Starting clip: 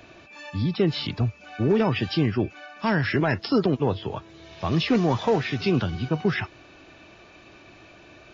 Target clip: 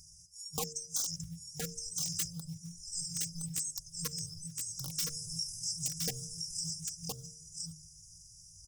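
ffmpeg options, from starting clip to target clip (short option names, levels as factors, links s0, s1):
-filter_complex "[0:a]asetrate=72056,aresample=44100,atempo=0.612027,afftfilt=real='re*(1-between(b*sr/4096,180,5100))':imag='im*(1-between(b*sr/4096,180,5100))':win_size=4096:overlap=0.75,acrusher=bits=8:mode=log:mix=0:aa=0.000001,aeval=exprs='(mod(18.8*val(0)+1,2)-1)/18.8':c=same,highshelf=f=5200:g=5,bandreject=f=79.84:t=h:w=4,bandreject=f=159.68:t=h:w=4,bandreject=f=239.52:t=h:w=4,bandreject=f=319.36:t=h:w=4,bandreject=f=399.2:t=h:w=4,bandreject=f=479.04:t=h:w=4,bandreject=f=558.88:t=h:w=4,bandreject=f=638.72:t=h:w=4,bandreject=f=718.56:t=h:w=4,adynamicequalizer=threshold=0.00562:dfrequency=230:dqfactor=0.82:tfrequency=230:tqfactor=0.82:attack=5:release=100:ratio=0.375:range=1.5:mode=boostabove:tftype=bell,asetrate=42336,aresample=44100,acompressor=threshold=0.02:ratio=3,aecho=1:1:3.6:0.72,asplit=2[s0][s1];[s1]aecho=0:1:1017:0.668[s2];[s0][s2]amix=inputs=2:normalize=0,afftfilt=real='re*(1-between(b*sr/1024,710*pow(2300/710,0.5+0.5*sin(2*PI*2.1*pts/sr))/1.41,710*pow(2300/710,0.5+0.5*sin(2*PI*2.1*pts/sr))*1.41))':imag='im*(1-between(b*sr/1024,710*pow(2300/710,0.5+0.5*sin(2*PI*2.1*pts/sr))/1.41,710*pow(2300/710,0.5+0.5*sin(2*PI*2.1*pts/sr))*1.41))':win_size=1024:overlap=0.75"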